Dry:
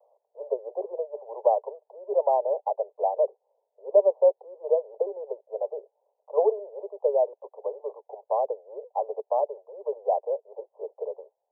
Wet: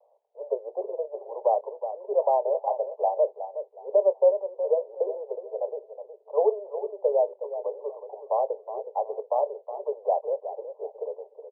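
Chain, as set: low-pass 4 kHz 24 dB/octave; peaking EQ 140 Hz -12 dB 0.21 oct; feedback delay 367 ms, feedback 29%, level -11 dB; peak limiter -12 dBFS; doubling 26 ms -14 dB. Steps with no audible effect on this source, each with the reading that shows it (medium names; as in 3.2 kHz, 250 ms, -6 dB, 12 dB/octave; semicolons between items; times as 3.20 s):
low-pass 4 kHz: input has nothing above 1.1 kHz; peaking EQ 140 Hz: input has nothing below 360 Hz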